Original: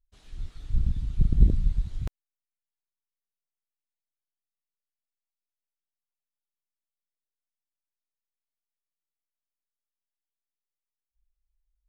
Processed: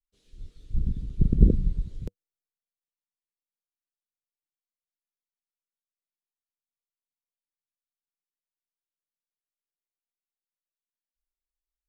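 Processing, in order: FFT filter 100 Hz 0 dB, 190 Hz +6 dB, 310 Hz +6 dB, 480 Hz +11 dB, 720 Hz -7 dB; three bands expanded up and down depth 40%; trim -2 dB

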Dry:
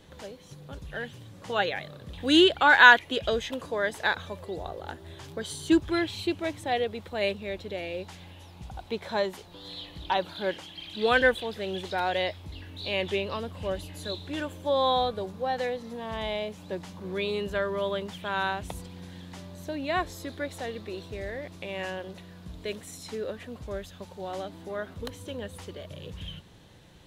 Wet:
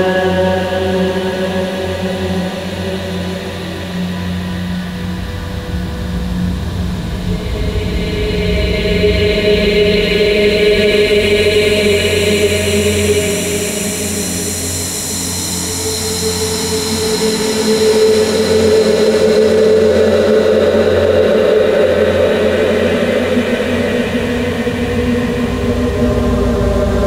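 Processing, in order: Paulstretch 17×, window 0.50 s, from 22.05 s; feedback echo behind a low-pass 156 ms, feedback 83%, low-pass 3.6 kHz, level -10.5 dB; loudness maximiser +25.5 dB; trim -1 dB

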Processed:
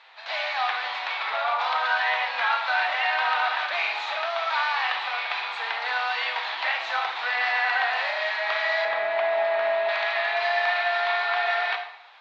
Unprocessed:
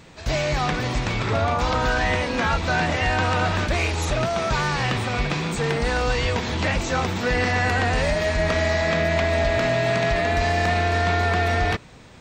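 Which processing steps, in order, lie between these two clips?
elliptic band-pass 770–4000 Hz, stop band 80 dB; 8.85–9.89 s: tilt EQ -4.5 dB/octave; reverberation RT60 0.70 s, pre-delay 26 ms, DRR 5 dB

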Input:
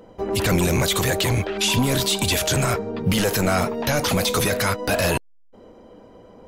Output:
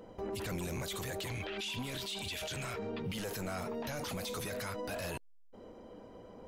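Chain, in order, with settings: hard clipper -13 dBFS, distortion -35 dB; 1.27–3.15 s: peaking EQ 2.9 kHz +9.5 dB 1.5 oct; peak limiter -26.5 dBFS, peak gain reduction 22 dB; trim -5.5 dB

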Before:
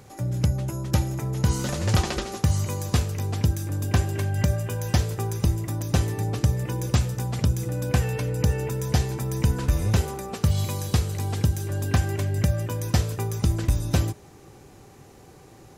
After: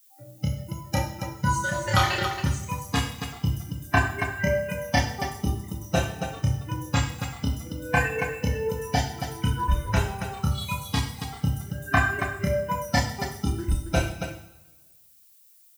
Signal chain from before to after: expander on every frequency bin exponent 3; peaking EQ 1.4 kHz +13 dB 2.8 oct; two-slope reverb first 0.63 s, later 1.6 s, DRR 1.5 dB; added noise violet -59 dBFS; on a send: loudspeakers at several distances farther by 10 m -2 dB, 95 m -7 dB

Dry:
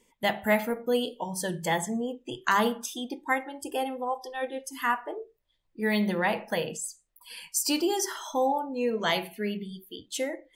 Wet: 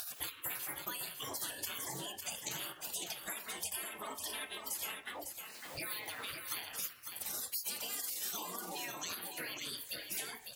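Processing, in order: dynamic bell 4.3 kHz, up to -5 dB, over -44 dBFS, Q 0.71; spectral gate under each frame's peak -25 dB weak; upward compressor, threshold -37 dBFS; high-pass 64 Hz; compression 10:1, threshold -49 dBFS, peak gain reduction 13.5 dB; waveshaping leveller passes 1; treble shelf 7 kHz +9.5 dB; on a send: delay 553 ms -6.5 dB; on the sum: loudspeaker Doppler distortion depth 0.42 ms; trim +4.5 dB

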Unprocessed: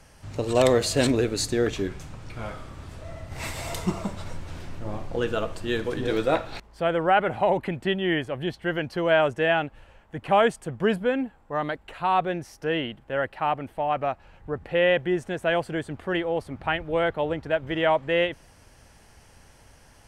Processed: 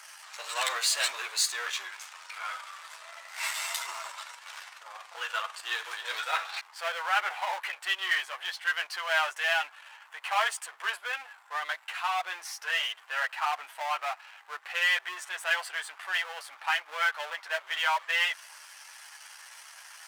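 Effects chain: chorus voices 6, 0.32 Hz, delay 12 ms, depth 1.8 ms; power-law waveshaper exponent 0.7; inverse Chebyshev high-pass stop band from 170 Hz, stop band 80 dB

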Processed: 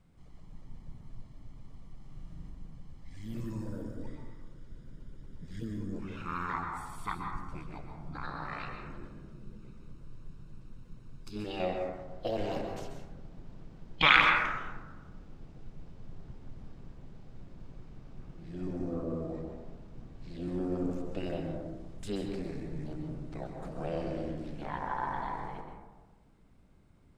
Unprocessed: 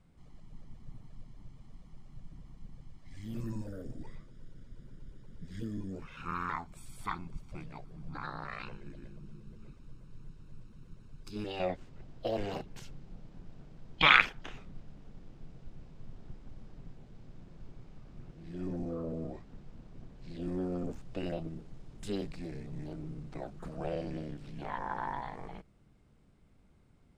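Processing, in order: 1.97–2.50 s: flutter echo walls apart 7 m, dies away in 0.61 s; plate-style reverb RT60 1.2 s, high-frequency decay 0.3×, pre-delay 115 ms, DRR 2.5 dB

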